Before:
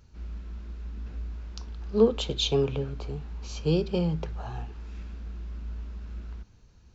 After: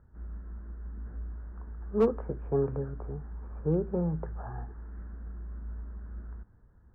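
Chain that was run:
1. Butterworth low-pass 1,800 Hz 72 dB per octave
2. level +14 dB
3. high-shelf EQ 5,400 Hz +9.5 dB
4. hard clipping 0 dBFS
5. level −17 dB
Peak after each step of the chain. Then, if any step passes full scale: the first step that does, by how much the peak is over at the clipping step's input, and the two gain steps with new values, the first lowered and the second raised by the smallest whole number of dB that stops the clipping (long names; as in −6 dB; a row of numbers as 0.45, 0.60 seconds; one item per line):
−9.0, +5.0, +5.0, 0.0, −17.0 dBFS
step 2, 5.0 dB
step 2 +9 dB, step 5 −12 dB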